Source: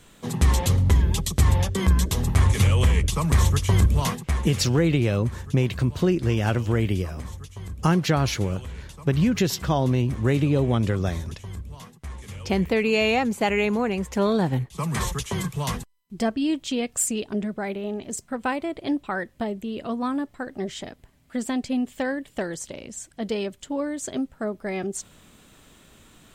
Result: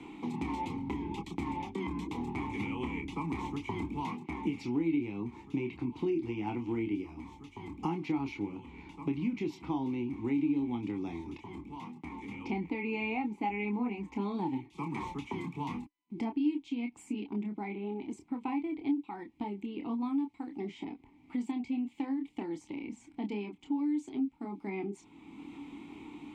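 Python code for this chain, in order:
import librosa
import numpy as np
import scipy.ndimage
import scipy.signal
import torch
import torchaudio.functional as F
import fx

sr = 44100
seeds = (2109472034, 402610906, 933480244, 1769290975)

y = fx.vowel_filter(x, sr, vowel='u')
y = fx.chorus_voices(y, sr, voices=6, hz=0.15, base_ms=27, depth_ms=2.8, mix_pct=35)
y = fx.band_squash(y, sr, depth_pct=70)
y = F.gain(torch.from_numpy(y), 4.5).numpy()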